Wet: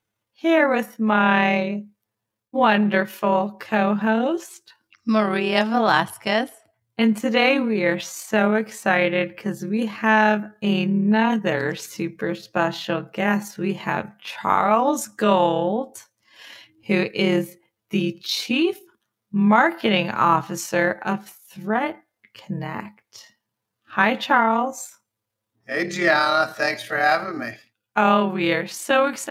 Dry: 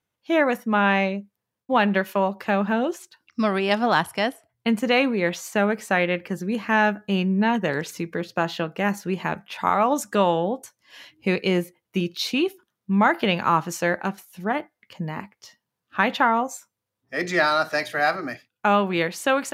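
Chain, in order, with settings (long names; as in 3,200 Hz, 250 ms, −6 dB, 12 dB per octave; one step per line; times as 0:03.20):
time stretch by overlap-add 1.5×, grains 55 ms
level +3 dB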